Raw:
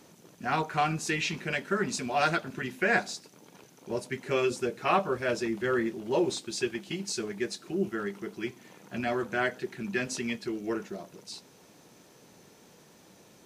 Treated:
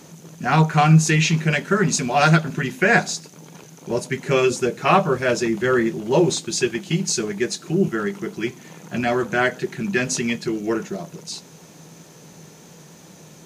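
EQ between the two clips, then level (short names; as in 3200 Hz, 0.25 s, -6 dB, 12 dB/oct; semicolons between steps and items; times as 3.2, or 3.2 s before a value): bell 160 Hz +14.5 dB 0.21 oct; bell 6600 Hz +7 dB 0.24 oct; +9.0 dB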